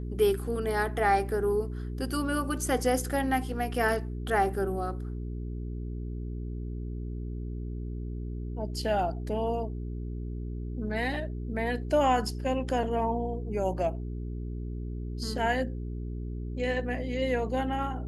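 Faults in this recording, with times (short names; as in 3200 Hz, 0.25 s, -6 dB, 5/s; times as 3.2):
hum 60 Hz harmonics 7 -35 dBFS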